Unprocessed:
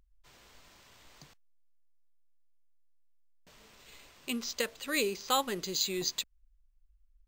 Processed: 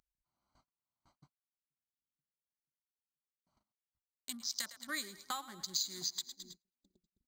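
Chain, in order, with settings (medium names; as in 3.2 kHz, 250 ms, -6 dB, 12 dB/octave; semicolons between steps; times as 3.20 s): local Wiener filter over 25 samples; treble shelf 9.5 kHz +5 dB; static phaser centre 1.1 kHz, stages 4; saturation -20 dBFS, distortion -20 dB; two-band feedback delay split 350 Hz, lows 484 ms, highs 107 ms, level -15 dB; compression 10:1, threshold -43 dBFS, peak gain reduction 16 dB; gate -56 dBFS, range -45 dB; upward compressor, threshold -55 dBFS; frequency weighting D; 3.72–5.83 s: three bands expanded up and down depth 100%; trim +1 dB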